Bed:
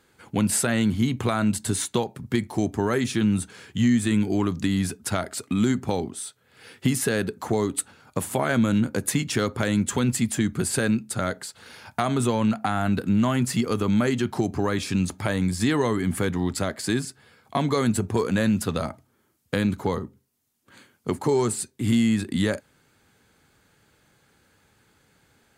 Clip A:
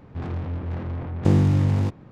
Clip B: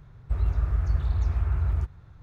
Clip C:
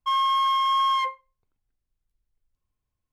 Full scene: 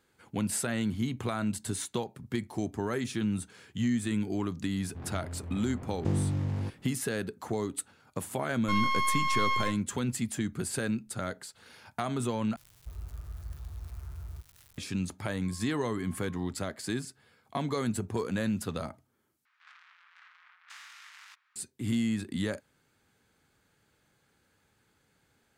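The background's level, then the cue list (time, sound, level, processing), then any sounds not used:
bed -8.5 dB
4.80 s: add A -11 dB
8.62 s: add C -2 dB + half-wave rectifier
12.56 s: replace with B -16.5 dB + zero-crossing glitches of -23.5 dBFS
15.38 s: add C -8 dB + Butterworth band-pass 210 Hz, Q 1
19.45 s: replace with A -7 dB + steep high-pass 1.3 kHz

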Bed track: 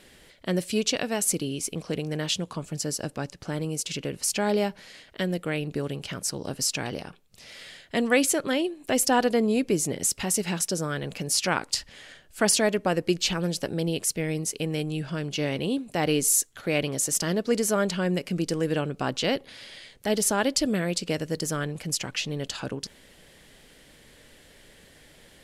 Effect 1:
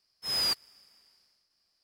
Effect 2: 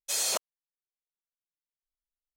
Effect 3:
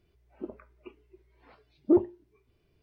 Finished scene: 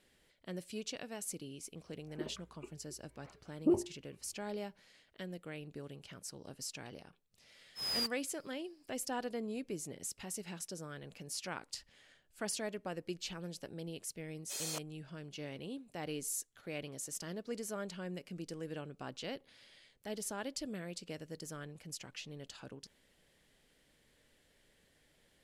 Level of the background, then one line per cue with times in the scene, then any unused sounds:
bed track -17 dB
1.77 s: add 3 -3 dB + peak limiter -18 dBFS
7.53 s: add 1 -7.5 dB
14.41 s: add 2 -12 dB

